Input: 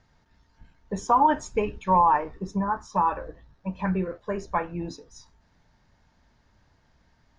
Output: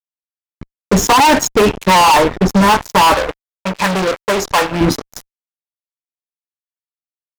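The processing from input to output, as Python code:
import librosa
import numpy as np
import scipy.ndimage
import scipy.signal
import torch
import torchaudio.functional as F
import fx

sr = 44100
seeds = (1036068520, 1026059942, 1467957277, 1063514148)

y = fx.notch_comb(x, sr, f0_hz=1200.0, at=(1.12, 2.08))
y = fx.fuzz(y, sr, gain_db=37.0, gate_db=-42.0)
y = fx.low_shelf(y, sr, hz=370.0, db=-12.0, at=(3.14, 4.81))
y = y * 10.0 ** (5.5 / 20.0)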